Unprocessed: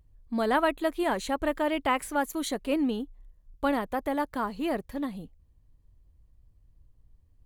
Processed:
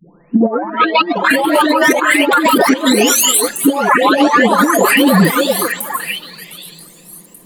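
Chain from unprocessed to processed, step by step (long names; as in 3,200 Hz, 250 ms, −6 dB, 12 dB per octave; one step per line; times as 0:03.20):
every frequency bin delayed by itself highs late, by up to 913 ms
compressor whose output falls as the input rises −38 dBFS, ratio −0.5
elliptic high-pass filter 170 Hz, stop band 40 dB
echo through a band-pass that steps 385 ms, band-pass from 480 Hz, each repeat 1.4 octaves, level −5 dB
boost into a limiter +32 dB
feedback echo with a swinging delay time 299 ms, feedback 56%, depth 155 cents, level −24 dB
level −1 dB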